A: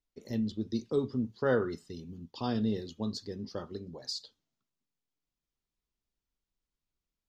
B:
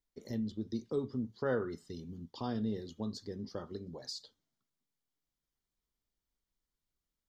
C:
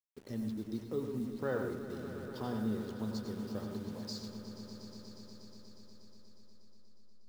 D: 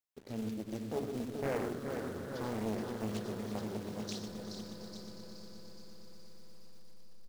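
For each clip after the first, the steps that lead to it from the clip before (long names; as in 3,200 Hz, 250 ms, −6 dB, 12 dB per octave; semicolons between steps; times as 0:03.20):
notch filter 2,600 Hz, Q 6.9; dynamic equaliser 4,300 Hz, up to −4 dB, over −54 dBFS, Q 1.2; in parallel at +1 dB: downward compressor, threshold −39 dBFS, peak gain reduction 15.5 dB; on the sum: level −7 dB
hold until the input has moved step −51.5 dBFS; echo that builds up and dies away 120 ms, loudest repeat 5, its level −14.5 dB; convolution reverb RT60 0.30 s, pre-delay 87 ms, DRR 5.5 dB; level −2.5 dB
floating-point word with a short mantissa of 2 bits; repeating echo 423 ms, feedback 56%, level −6 dB; highs frequency-modulated by the lows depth 0.89 ms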